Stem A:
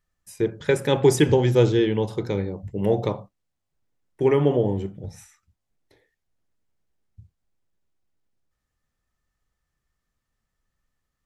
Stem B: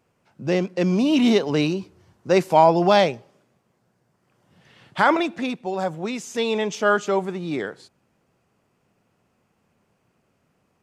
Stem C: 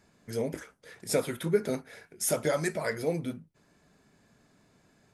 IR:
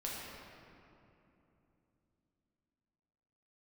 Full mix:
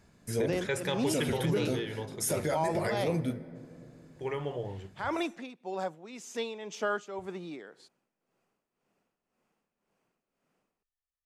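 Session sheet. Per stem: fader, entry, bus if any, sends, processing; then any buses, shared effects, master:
+2.0 dB, 0.00 s, no send, noise gate with hold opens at −43 dBFS; parametric band 240 Hz −14.5 dB 1.8 octaves; automatic ducking −10 dB, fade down 1.90 s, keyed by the second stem
−8.0 dB, 0.00 s, no send, high-pass filter 210 Hz 12 dB per octave; amplitude tremolo 1.9 Hz, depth 73%
−1.0 dB, 0.00 s, send −15 dB, low-shelf EQ 150 Hz +9 dB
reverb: on, RT60 3.0 s, pre-delay 6 ms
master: brickwall limiter −20.5 dBFS, peak gain reduction 10 dB

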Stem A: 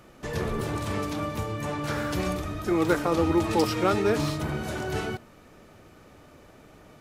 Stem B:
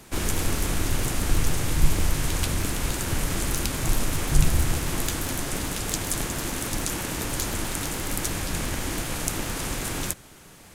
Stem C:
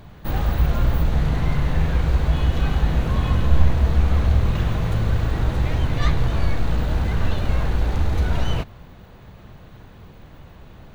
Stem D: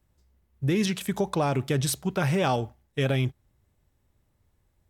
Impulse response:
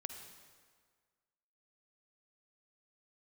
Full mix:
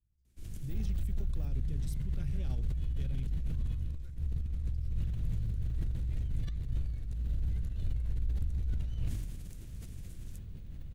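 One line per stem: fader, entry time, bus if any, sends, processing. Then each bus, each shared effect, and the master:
−10.5 dB, 1.15 s, no bus, no send, high-pass filter 1,500 Hz 6 dB per octave; downward compressor 6 to 1, threshold −37 dBFS, peak gain reduction 12 dB
−14.0 dB, 0.25 s, bus A, no send, no processing
+2.5 dB, 0.45 s, bus A, no send, no processing
−2.0 dB, 0.00 s, no bus, no send, no processing
bus A: 0.0 dB, compressor whose output falls as the input rises −19 dBFS, ratio −0.5; brickwall limiter −15.5 dBFS, peak gain reduction 10.5 dB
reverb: not used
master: soft clipping −16.5 dBFS, distortion −20 dB; guitar amp tone stack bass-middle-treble 10-0-1; level that may fall only so fast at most 33 dB per second

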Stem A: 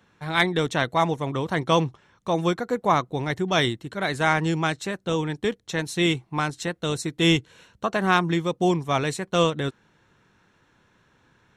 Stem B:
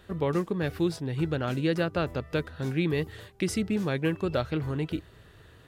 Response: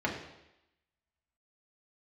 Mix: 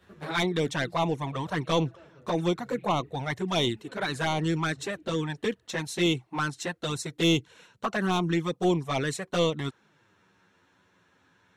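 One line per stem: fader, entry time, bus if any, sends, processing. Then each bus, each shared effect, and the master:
+1.0 dB, 0.00 s, no send, noise gate with hold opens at −54 dBFS; high-pass filter 150 Hz 6 dB per octave
−13.0 dB, 0.00 s, send −19 dB, multiband upward and downward compressor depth 40%; automatic ducking −18 dB, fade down 1.80 s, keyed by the first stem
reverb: on, RT60 0.90 s, pre-delay 3 ms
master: soft clipping −15 dBFS, distortion −12 dB; flanger swept by the level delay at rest 11.5 ms, full sweep at −19.5 dBFS

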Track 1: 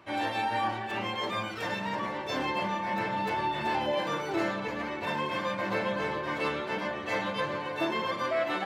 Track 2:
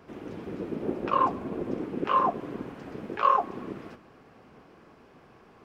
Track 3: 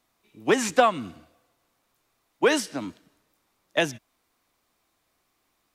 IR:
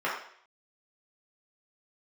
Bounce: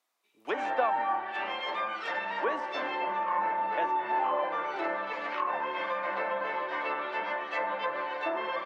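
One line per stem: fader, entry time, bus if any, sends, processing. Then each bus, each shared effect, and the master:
−0.5 dB, 0.45 s, send −16.5 dB, no processing
−9.5 dB, 2.15 s, no send, spectral tilt +4 dB per octave
−7.0 dB, 0.00 s, no send, no processing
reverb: on, RT60 0.60 s, pre-delay 3 ms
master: high-pass filter 520 Hz 12 dB per octave; treble cut that deepens with the level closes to 1,500 Hz, closed at −26 dBFS

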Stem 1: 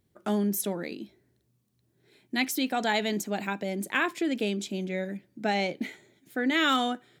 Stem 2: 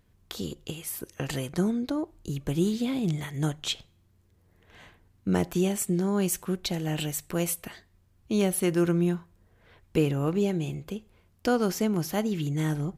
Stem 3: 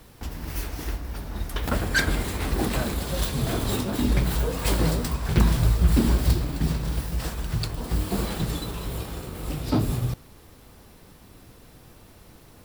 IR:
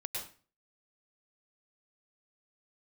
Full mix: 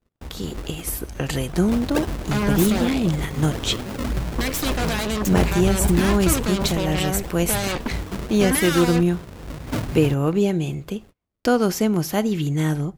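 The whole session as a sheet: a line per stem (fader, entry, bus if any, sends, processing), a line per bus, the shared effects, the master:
−0.5 dB, 2.05 s, no send, brickwall limiter −22 dBFS, peak gain reduction 10.5 dB; harmonic generator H 6 −8 dB, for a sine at −22 dBFS
+1.5 dB, 0.00 s, no send, no processing
−1.0 dB, 0.00 s, no send, sample-and-hold swept by an LFO 38×, swing 100% 3.8 Hz; automatic ducking −7 dB, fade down 0.75 s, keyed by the second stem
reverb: not used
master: noise gate −46 dBFS, range −33 dB; automatic gain control gain up to 5 dB

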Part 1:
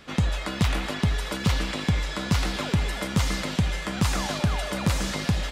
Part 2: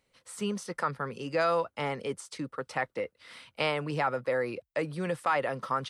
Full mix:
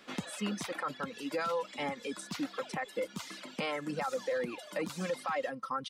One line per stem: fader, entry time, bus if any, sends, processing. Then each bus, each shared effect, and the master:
−6.0 dB, 0.00 s, no send, high-pass filter 200 Hz 24 dB per octave; gain into a clipping stage and back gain 18 dB; automatic ducking −6 dB, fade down 0.90 s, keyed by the second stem
−2.5 dB, 0.00 s, no send, comb filter 3.8 ms, depth 61%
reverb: not used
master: reverb reduction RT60 1.5 s; brickwall limiter −25.5 dBFS, peak gain reduction 9.5 dB

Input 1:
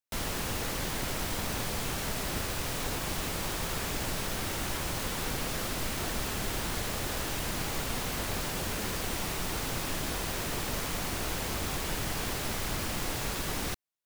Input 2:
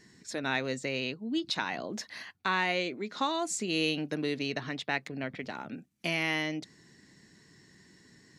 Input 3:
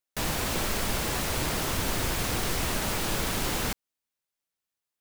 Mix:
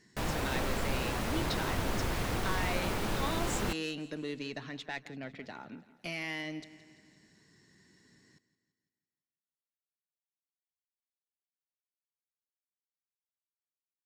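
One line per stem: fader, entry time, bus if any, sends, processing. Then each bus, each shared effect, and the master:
muted
−5.0 dB, 0.00 s, no send, echo send −17 dB, tube saturation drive 22 dB, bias 0.25
−2.5 dB, 0.00 s, no send, no echo send, high-shelf EQ 3,400 Hz −11 dB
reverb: not used
echo: repeating echo 168 ms, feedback 54%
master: no processing

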